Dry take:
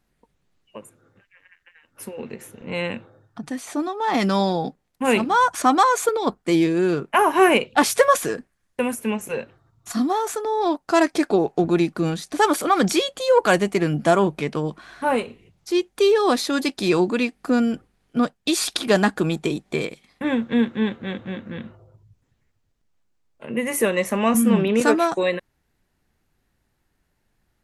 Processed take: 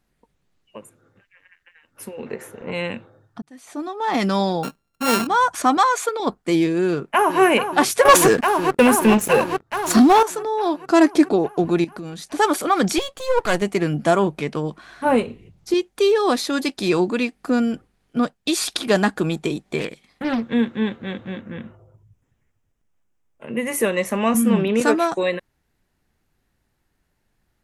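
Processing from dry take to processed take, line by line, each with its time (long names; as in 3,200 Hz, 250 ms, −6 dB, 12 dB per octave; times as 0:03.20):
0:02.26–0:02.71: flat-topped bell 850 Hz +8 dB 2.7 octaves
0:03.42–0:04.04: fade in linear
0:04.63–0:05.27: samples sorted by size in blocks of 32 samples
0:05.77–0:06.20: meter weighting curve A
0:06.86–0:07.41: delay throw 430 ms, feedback 80%, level −9 dB
0:08.05–0:10.23: leveller curve on the samples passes 3
0:10.89–0:11.33: parametric band 290 Hz +7.5 dB
0:11.84–0:12.25: downward compressor 5 to 1, threshold −30 dBFS
0:12.98–0:13.62: gain on one half-wave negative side −12 dB
0:15.05–0:15.74: low-shelf EQ 420 Hz +9 dB
0:19.79–0:20.43: highs frequency-modulated by the lows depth 0.46 ms
0:21.41–0:23.47: parametric band 4,300 Hz −11.5 dB 0.42 octaves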